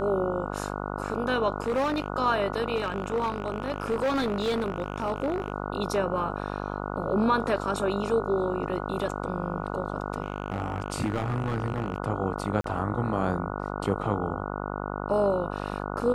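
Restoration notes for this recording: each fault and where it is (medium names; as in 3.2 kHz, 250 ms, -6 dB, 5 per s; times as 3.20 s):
buzz 50 Hz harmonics 29 -33 dBFS
1.60–2.08 s: clipped -22 dBFS
2.75–5.52 s: clipped -22.5 dBFS
10.22–11.98 s: clipped -22 dBFS
12.61–12.64 s: dropout 33 ms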